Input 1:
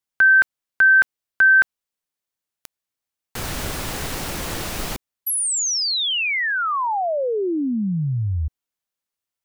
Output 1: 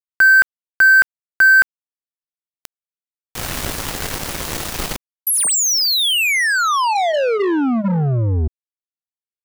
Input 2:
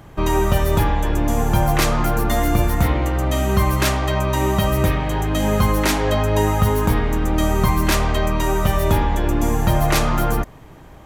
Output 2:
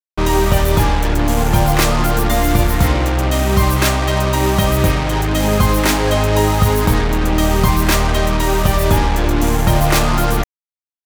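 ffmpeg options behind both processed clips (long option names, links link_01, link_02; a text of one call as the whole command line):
ffmpeg -i in.wav -af "bandreject=frequency=212.5:width_type=h:width=4,bandreject=frequency=425:width_type=h:width=4,bandreject=frequency=637.5:width_type=h:width=4,bandreject=frequency=850:width_type=h:width=4,acrusher=bits=3:mix=0:aa=0.5,volume=3.5dB" out.wav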